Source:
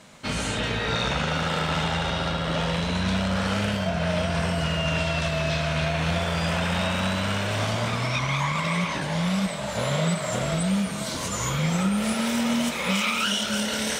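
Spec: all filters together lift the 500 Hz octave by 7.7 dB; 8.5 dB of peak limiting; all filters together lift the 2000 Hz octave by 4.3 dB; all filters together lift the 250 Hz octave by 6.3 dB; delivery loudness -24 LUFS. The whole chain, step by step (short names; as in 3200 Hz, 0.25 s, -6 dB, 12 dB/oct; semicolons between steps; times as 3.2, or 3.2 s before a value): bell 250 Hz +7.5 dB; bell 500 Hz +8 dB; bell 2000 Hz +5 dB; limiter -15.5 dBFS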